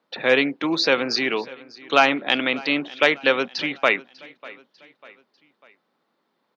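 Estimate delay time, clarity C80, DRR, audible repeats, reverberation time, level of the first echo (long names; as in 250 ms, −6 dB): 596 ms, no reverb audible, no reverb audible, 3, no reverb audible, −21.0 dB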